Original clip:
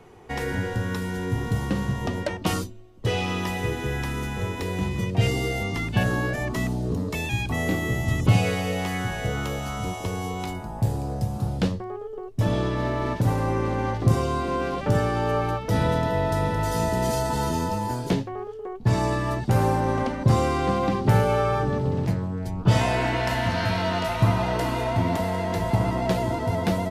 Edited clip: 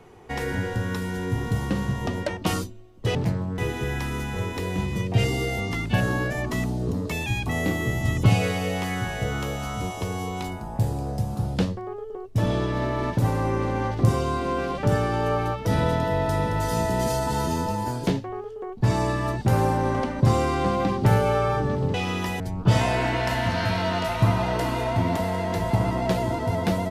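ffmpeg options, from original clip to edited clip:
-filter_complex "[0:a]asplit=5[a][b][c][d][e];[a]atrim=end=3.152[f];[b]atrim=start=21.968:end=22.402[g];[c]atrim=start=3.608:end=21.972[h];[d]atrim=start=3.148:end=3.612[i];[e]atrim=start=22.398[j];[f][g]acrossfade=d=0.004:c1=hsin:c2=hsin[k];[k][h]acrossfade=d=0.004:c1=hsin:c2=hsin[l];[l][i]acrossfade=d=0.004:c1=hsin:c2=hsin[m];[m][j]acrossfade=d=0.004:c1=hsin:c2=hsin"

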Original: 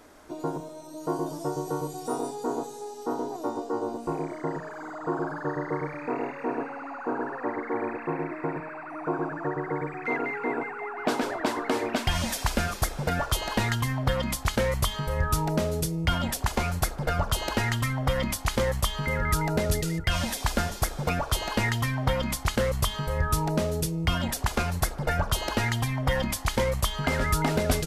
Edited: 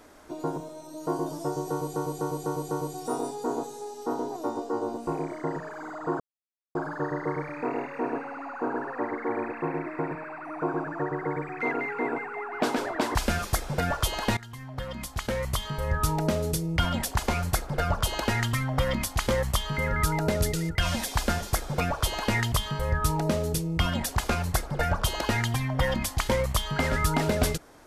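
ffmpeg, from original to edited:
-filter_complex "[0:a]asplit=9[a][b][c][d][e][f][g][h][i];[a]atrim=end=1.962[j];[b]atrim=start=1.708:end=1.962[k];[c]atrim=start=1.708:end=1.962[l];[d]atrim=start=1.708:end=1.962[m];[e]atrim=start=1.708:end=5.2,asetpts=PTS-STARTPTS,afade=t=out:st=3.488:d=0.004:c=hsin,apad=pad_dur=0.55[n];[f]atrim=start=5.2:end=11.602,asetpts=PTS-STARTPTS,afade=t=in:d=0.004:c=hsin[o];[g]atrim=start=12.438:end=13.66,asetpts=PTS-STARTPTS,afade=t=out:st=1.218:d=0.004:c=hsin:silence=0.1[p];[h]atrim=start=13.66:end=21.812,asetpts=PTS-STARTPTS,afade=t=in:d=1.72:silence=0.1[q];[i]atrim=start=22.798[r];[j][k]acrossfade=d=0.004:c1=hsin:c2=hsin[s];[s][l]acrossfade=d=0.004:c1=hsin:c2=hsin[t];[t][m]acrossfade=d=0.004:c1=hsin:c2=hsin[u];[n][o]concat=n=2:v=0:a=1[v];[u][v]acrossfade=d=0.004:c1=hsin:c2=hsin[w];[p][q]concat=n=2:v=0:a=1[x];[w][x]acrossfade=d=0.004:c1=hsin:c2=hsin[y];[y][r]acrossfade=d=0.004:c1=hsin:c2=hsin"

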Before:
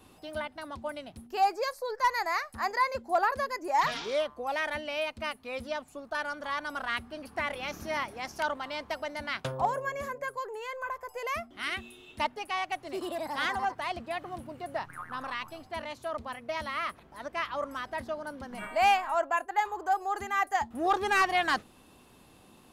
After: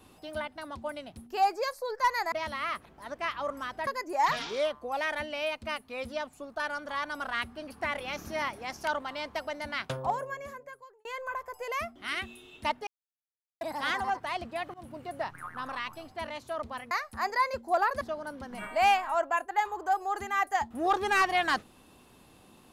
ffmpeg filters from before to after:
-filter_complex "[0:a]asplit=9[a][b][c][d][e][f][g][h][i];[a]atrim=end=2.322[j];[b]atrim=start=16.458:end=18.012[k];[c]atrim=start=3.418:end=10.6,asetpts=PTS-STARTPTS,afade=t=out:st=6.002:d=1.18[l];[d]atrim=start=10.6:end=12.42,asetpts=PTS-STARTPTS,afade=t=in:d=0.004:c=hsin,afade=t=out:st=1.816:d=0.004:c=hsin[m];[e]atrim=start=12.42:end=13.16,asetpts=PTS-STARTPTS,volume=0[n];[f]atrim=start=13.16:end=14.29,asetpts=PTS-STARTPTS,afade=t=in:d=0.004:c=hsin,afade=t=out:st=1.126:d=0.004:c=hsin:silence=0.0891251[o];[g]atrim=start=14.29:end=16.462,asetpts=PTS-STARTPTS,afade=t=in:d=0.26:c=qsin:silence=0.0891251[p];[h]atrim=start=2.318:end=3.422[q];[i]atrim=start=18.008[r];[j][k]acrossfade=d=0.004:c1=hsin:c2=hsin[s];[l][m][n][o][p]concat=n=5:v=0:a=1[t];[s][t]acrossfade=d=0.004:c1=hsin:c2=hsin[u];[u][q]acrossfade=d=0.004:c1=hsin:c2=hsin[v];[v][r]acrossfade=d=0.004:c1=hsin:c2=hsin"

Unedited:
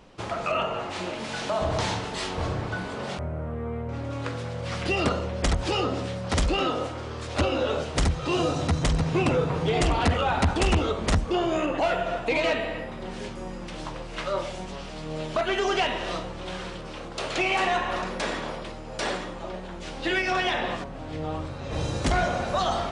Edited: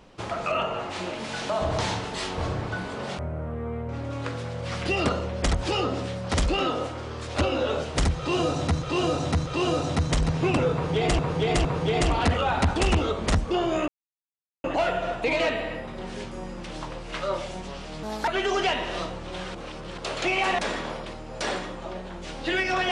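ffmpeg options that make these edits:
-filter_complex "[0:a]asplit=11[a][b][c][d][e][f][g][h][i][j][k];[a]atrim=end=8.822[l];[b]atrim=start=8.178:end=8.822[m];[c]atrim=start=8.178:end=9.912[n];[d]atrim=start=9.448:end=9.912[o];[e]atrim=start=9.448:end=11.68,asetpts=PTS-STARTPTS,afade=t=out:st=2.228:d=0.004:c=hsin,apad=pad_dur=0.76[p];[f]atrim=start=11.68:end=15.074,asetpts=PTS-STARTPTS,afade=t=in:d=0.004:c=hsin[q];[g]atrim=start=15.07:end=15.41,asetpts=PTS-STARTPTS,asetrate=60858,aresample=44100,atrim=end_sample=10865,asetpts=PTS-STARTPTS[r];[h]atrim=start=15.406:end=16.682[s];[i]atrim=start=16.678:end=17.112,asetpts=PTS-STARTPTS,areverse[t];[j]atrim=start=17.108:end=17.722[u];[k]atrim=start=18.168[v];[l][m]acrossfade=d=0.004:c1=hsin:c2=hsin[w];[w][n]acrossfade=d=0.004:c1=hsin:c2=hsin[x];[x][o]acrossfade=d=0.004:c1=hsin:c2=hsin[y];[p][q]concat=n=2:v=0:a=1[z];[y][z]acrossfade=d=0.004:c1=hsin:c2=hsin[aa];[aa][r]acrossfade=d=0.004:c1=hsin:c2=hsin[ab];[ab][s]acrossfade=d=0.004:c1=hsin:c2=hsin[ac];[ac][t]acrossfade=d=0.004:c1=hsin:c2=hsin[ad];[ad][u]acrossfade=d=0.004:c1=hsin:c2=hsin[ae];[ae][v]acrossfade=d=0.004:c1=hsin:c2=hsin"

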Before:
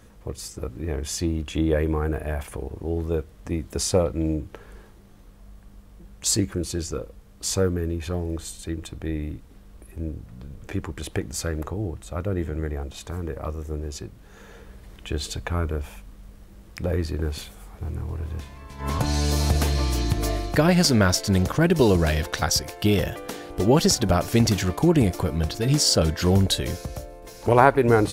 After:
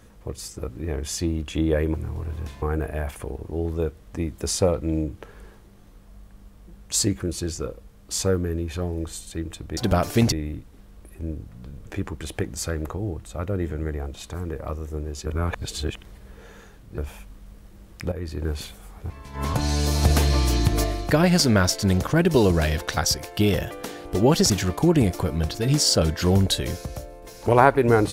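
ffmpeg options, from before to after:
-filter_complex "[0:a]asplit=12[a][b][c][d][e][f][g][h][i][j][k][l];[a]atrim=end=1.942[m];[b]atrim=start=17.868:end=18.552[n];[c]atrim=start=1.938:end=9.092[o];[d]atrim=start=23.948:end=24.502[p];[e]atrim=start=9.088:end=14.032[q];[f]atrim=start=14.028:end=15.752,asetpts=PTS-STARTPTS,areverse[r];[g]atrim=start=15.748:end=16.89,asetpts=PTS-STARTPTS,afade=t=out:st=1.138:d=0.004:c=hsin:silence=0.251189[s];[h]atrim=start=16.89:end=17.872,asetpts=PTS-STARTPTS,afade=t=in:d=0.36:silence=0.251189[t];[i]atrim=start=18.548:end=19.482[u];[j]atrim=start=19.478:end=20.292,asetpts=PTS-STARTPTS,volume=3dB[v];[k]atrim=start=20.288:end=23.952[w];[l]atrim=start=24.498[x];[m][n]acrossfade=d=0.004:c1=hsin:c2=hsin[y];[y][o]acrossfade=d=0.004:c1=hsin:c2=hsin[z];[z][p]acrossfade=d=0.004:c1=hsin:c2=hsin[aa];[aa][q]acrossfade=d=0.004:c1=hsin:c2=hsin[ab];[ab][r]acrossfade=d=0.004:c1=hsin:c2=hsin[ac];[s][t]concat=n=2:v=0:a=1[ad];[ac][ad]acrossfade=d=0.004:c1=hsin:c2=hsin[ae];[ae][u]acrossfade=d=0.004:c1=hsin:c2=hsin[af];[af][v]acrossfade=d=0.004:c1=hsin:c2=hsin[ag];[ag][w]acrossfade=d=0.004:c1=hsin:c2=hsin[ah];[ah][x]acrossfade=d=0.004:c1=hsin:c2=hsin"

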